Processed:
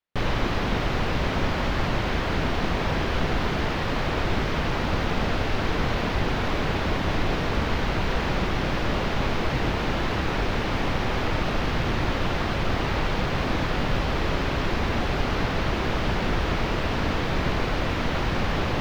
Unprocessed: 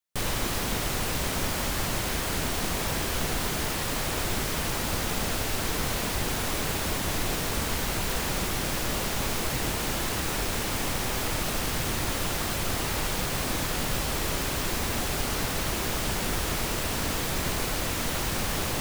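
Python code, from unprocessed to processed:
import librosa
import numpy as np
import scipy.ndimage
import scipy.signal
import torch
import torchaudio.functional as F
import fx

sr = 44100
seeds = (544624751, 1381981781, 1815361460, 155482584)

y = fx.air_absorb(x, sr, metres=260.0)
y = y * librosa.db_to_amplitude(6.0)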